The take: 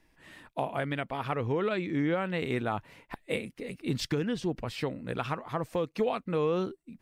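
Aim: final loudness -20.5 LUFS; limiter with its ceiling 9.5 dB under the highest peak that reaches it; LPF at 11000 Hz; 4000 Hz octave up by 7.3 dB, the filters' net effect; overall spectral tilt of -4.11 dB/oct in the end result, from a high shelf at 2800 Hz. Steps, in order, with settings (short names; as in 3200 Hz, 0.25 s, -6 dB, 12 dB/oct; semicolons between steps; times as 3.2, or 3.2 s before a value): LPF 11000 Hz; high shelf 2800 Hz +3.5 dB; bell 4000 Hz +6.5 dB; gain +13.5 dB; limiter -8.5 dBFS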